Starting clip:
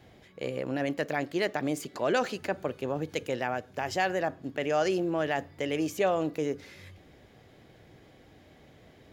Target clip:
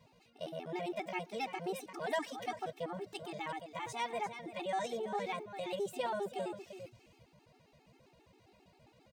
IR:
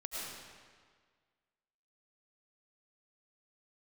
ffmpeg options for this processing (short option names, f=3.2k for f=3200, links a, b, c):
-af "asetrate=55563,aresample=44100,atempo=0.793701,aecho=1:1:345:0.316,afftfilt=real='re*gt(sin(2*PI*7.5*pts/sr)*(1-2*mod(floor(b*sr/1024/230),2)),0)':imag='im*gt(sin(2*PI*7.5*pts/sr)*(1-2*mod(floor(b*sr/1024/230),2)),0)':win_size=1024:overlap=0.75,volume=-6dB"